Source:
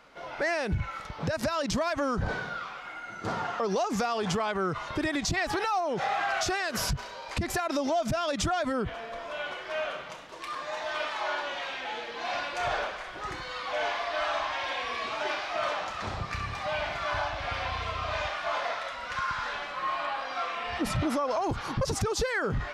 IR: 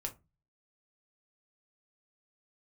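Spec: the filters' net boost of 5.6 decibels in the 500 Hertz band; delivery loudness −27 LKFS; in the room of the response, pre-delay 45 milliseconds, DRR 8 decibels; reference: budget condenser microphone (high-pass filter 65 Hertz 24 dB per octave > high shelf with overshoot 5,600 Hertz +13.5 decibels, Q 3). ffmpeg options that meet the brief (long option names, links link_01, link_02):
-filter_complex "[0:a]equalizer=frequency=500:width_type=o:gain=7.5,asplit=2[link_01][link_02];[1:a]atrim=start_sample=2205,adelay=45[link_03];[link_02][link_03]afir=irnorm=-1:irlink=0,volume=-7.5dB[link_04];[link_01][link_04]amix=inputs=2:normalize=0,highpass=frequency=65:width=0.5412,highpass=frequency=65:width=1.3066,highshelf=frequency=5600:width_type=q:width=3:gain=13.5,volume=-1dB"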